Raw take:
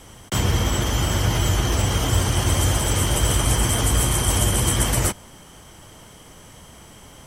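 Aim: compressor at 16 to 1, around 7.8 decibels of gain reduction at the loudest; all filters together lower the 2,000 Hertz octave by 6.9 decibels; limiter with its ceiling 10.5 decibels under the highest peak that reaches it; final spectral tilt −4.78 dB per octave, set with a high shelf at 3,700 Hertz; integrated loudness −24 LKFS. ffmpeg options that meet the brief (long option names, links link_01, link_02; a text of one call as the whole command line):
ffmpeg -i in.wav -af "equalizer=frequency=2000:width_type=o:gain=-8,highshelf=frequency=3700:gain=-4,acompressor=threshold=-23dB:ratio=16,volume=10dB,alimiter=limit=-14.5dB:level=0:latency=1" out.wav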